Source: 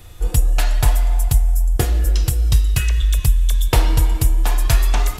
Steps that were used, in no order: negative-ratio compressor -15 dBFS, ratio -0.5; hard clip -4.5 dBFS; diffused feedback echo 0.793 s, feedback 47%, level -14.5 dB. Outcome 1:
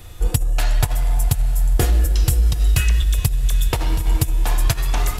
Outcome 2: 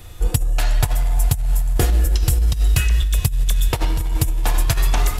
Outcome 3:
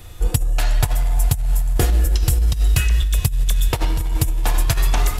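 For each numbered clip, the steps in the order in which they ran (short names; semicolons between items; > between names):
negative-ratio compressor > hard clip > diffused feedback echo; diffused feedback echo > negative-ratio compressor > hard clip; hard clip > diffused feedback echo > negative-ratio compressor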